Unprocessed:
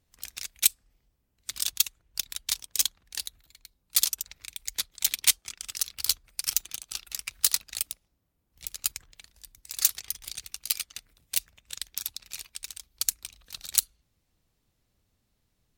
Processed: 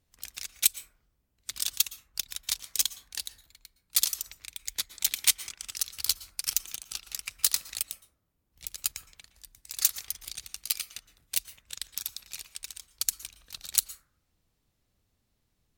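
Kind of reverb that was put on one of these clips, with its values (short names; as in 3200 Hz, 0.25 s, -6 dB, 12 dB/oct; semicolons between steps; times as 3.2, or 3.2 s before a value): plate-style reverb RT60 0.64 s, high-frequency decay 0.3×, pre-delay 0.105 s, DRR 13.5 dB; gain -1.5 dB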